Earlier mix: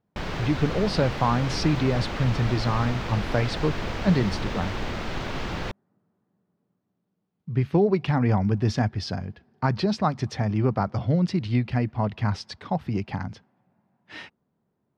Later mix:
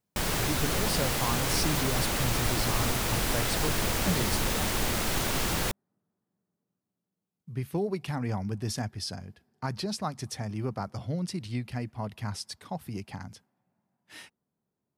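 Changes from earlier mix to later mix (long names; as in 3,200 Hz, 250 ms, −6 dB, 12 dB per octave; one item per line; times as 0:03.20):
speech −10.0 dB
master: remove high-frequency loss of the air 210 metres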